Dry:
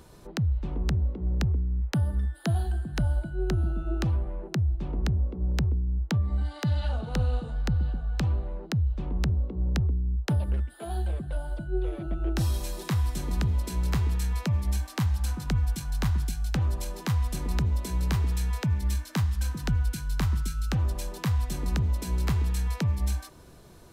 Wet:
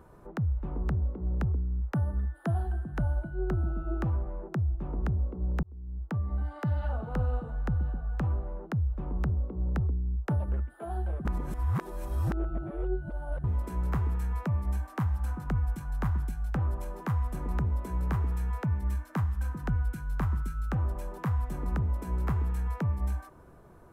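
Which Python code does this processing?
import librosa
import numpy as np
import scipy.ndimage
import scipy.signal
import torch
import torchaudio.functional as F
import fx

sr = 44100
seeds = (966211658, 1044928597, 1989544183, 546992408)

y = fx.edit(x, sr, fx.fade_in_span(start_s=5.63, length_s=1.0, curve='qsin'),
    fx.reverse_span(start_s=11.25, length_s=2.19), tone=tone)
y = fx.curve_eq(y, sr, hz=(230.0, 1300.0, 4200.0, 12000.0), db=(0, 4, -18, -9))
y = y * librosa.db_to_amplitude(-3.0)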